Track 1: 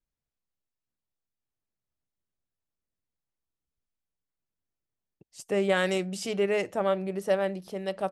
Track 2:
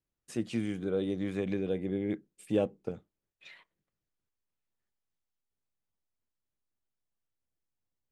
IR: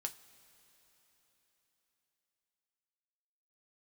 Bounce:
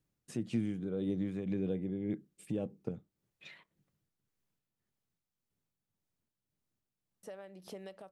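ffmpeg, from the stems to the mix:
-filter_complex "[0:a]alimiter=level_in=2.5dB:limit=-24dB:level=0:latency=1:release=196,volume=-2.5dB,acompressor=threshold=-43dB:ratio=12,volume=1dB,asplit=3[link_01][link_02][link_03];[link_01]atrim=end=4.59,asetpts=PTS-STARTPTS,afade=type=out:start_time=4.586:duration=0.004:curve=hsin[link_04];[link_02]atrim=start=4.59:end=7.23,asetpts=PTS-STARTPTS,volume=0[link_05];[link_03]atrim=start=7.23,asetpts=PTS-STARTPTS,afade=type=in:duration=0.004:curve=hsin[link_06];[link_04][link_05][link_06]concat=n=3:v=0:a=1[link_07];[1:a]acompressor=threshold=-47dB:ratio=2,equalizer=frequency=140:width_type=o:width=2.3:gain=13.5,volume=2dB[link_08];[link_07][link_08]amix=inputs=2:normalize=0,lowshelf=frequency=140:gain=-5,tremolo=f=1.8:d=0.42"

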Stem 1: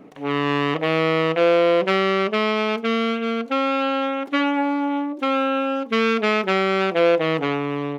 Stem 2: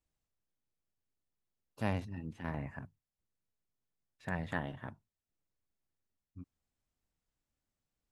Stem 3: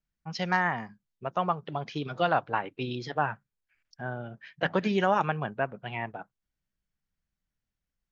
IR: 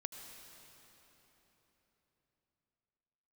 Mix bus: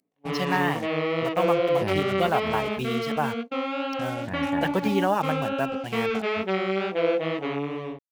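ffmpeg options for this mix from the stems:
-filter_complex "[0:a]acrossover=split=4200[link_01][link_02];[link_02]acompressor=threshold=-45dB:ratio=4:attack=1:release=60[link_03];[link_01][link_03]amix=inputs=2:normalize=0,agate=range=-29dB:threshold=-26dB:ratio=16:detection=peak,flanger=delay=15.5:depth=5.8:speed=2.3,volume=-3dB[link_04];[1:a]aeval=exprs='val(0)*gte(abs(val(0)),0.00133)':channel_layout=same,volume=2.5dB[link_05];[2:a]acompressor=mode=upward:threshold=-38dB:ratio=2.5,acrusher=bits=6:mix=0:aa=0.5,volume=2dB[link_06];[link_04][link_05][link_06]amix=inputs=3:normalize=0,equalizer=frequency=1400:width_type=o:width=0.78:gain=-4.5"

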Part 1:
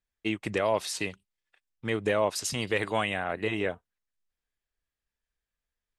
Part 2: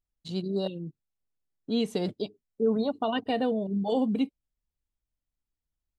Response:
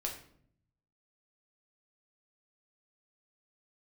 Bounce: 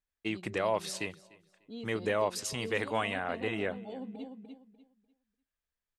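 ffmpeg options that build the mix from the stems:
-filter_complex "[0:a]equalizer=frequency=1100:width_type=o:width=1.7:gain=2.5,volume=-5dB,asplit=2[link_01][link_02];[link_02]volume=-23.5dB[link_03];[1:a]volume=-16.5dB,asplit=2[link_04][link_05];[link_05]volume=-5.5dB[link_06];[link_03][link_06]amix=inputs=2:normalize=0,aecho=0:1:297|594|891|1188:1|0.25|0.0625|0.0156[link_07];[link_01][link_04][link_07]amix=inputs=3:normalize=0"

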